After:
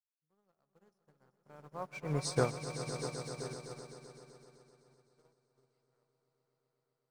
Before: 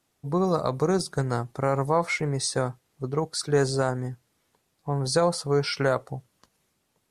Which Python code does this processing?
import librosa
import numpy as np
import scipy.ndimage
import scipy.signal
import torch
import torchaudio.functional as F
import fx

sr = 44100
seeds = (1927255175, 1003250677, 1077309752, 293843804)

p1 = fx.doppler_pass(x, sr, speed_mps=28, closest_m=5.1, pass_at_s=2.27)
p2 = fx.high_shelf(p1, sr, hz=8800.0, db=-8.0)
p3 = np.where(np.abs(p2) >= 10.0 ** (-39.0 / 20.0), p2, 0.0)
p4 = p2 + (p3 * librosa.db_to_amplitude(-5.0))
p5 = fx.echo_swell(p4, sr, ms=128, loudest=5, wet_db=-8)
p6 = fx.upward_expand(p5, sr, threshold_db=-41.0, expansion=2.5)
y = p6 * librosa.db_to_amplitude(-5.0)